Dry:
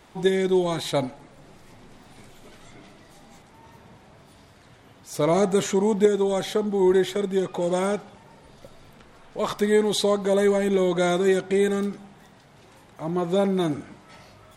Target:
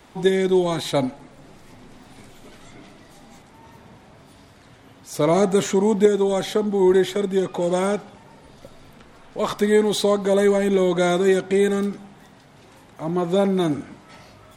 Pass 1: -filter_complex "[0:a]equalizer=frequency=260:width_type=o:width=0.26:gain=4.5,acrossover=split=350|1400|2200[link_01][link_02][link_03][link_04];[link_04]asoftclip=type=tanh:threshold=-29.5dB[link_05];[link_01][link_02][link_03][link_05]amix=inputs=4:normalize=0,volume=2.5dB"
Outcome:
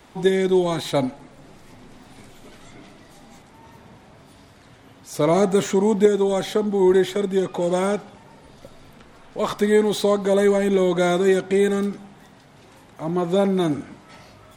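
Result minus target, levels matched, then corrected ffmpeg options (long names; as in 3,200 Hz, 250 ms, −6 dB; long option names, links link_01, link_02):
soft clipping: distortion +7 dB
-filter_complex "[0:a]equalizer=frequency=260:width_type=o:width=0.26:gain=4.5,acrossover=split=350|1400|2200[link_01][link_02][link_03][link_04];[link_04]asoftclip=type=tanh:threshold=-22dB[link_05];[link_01][link_02][link_03][link_05]amix=inputs=4:normalize=0,volume=2.5dB"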